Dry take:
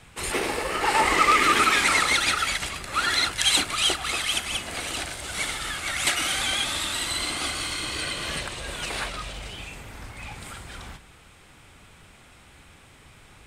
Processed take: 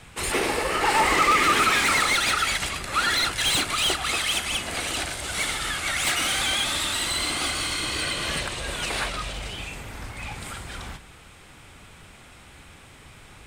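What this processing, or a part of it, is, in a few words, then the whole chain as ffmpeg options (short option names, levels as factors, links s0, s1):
saturation between pre-emphasis and de-emphasis: -af "highshelf=f=2100:g=12,asoftclip=type=tanh:threshold=0.211,highshelf=f=2100:g=-12,volume=1.5"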